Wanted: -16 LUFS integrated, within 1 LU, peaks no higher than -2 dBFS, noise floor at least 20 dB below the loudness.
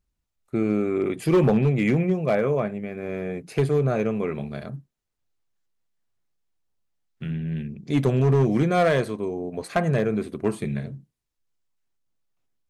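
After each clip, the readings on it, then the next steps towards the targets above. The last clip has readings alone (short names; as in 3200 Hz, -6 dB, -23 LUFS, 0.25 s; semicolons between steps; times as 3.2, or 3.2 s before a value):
clipped 0.6%; flat tops at -13.5 dBFS; loudness -24.0 LUFS; peak -13.5 dBFS; loudness target -16.0 LUFS
-> clip repair -13.5 dBFS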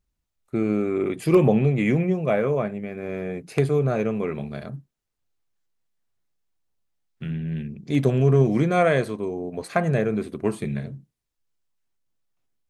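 clipped 0.0%; loudness -23.5 LUFS; peak -5.5 dBFS; loudness target -16.0 LUFS
-> gain +7.5 dB; limiter -2 dBFS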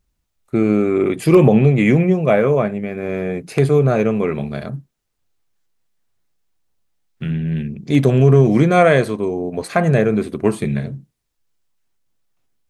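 loudness -16.5 LUFS; peak -2.0 dBFS; noise floor -73 dBFS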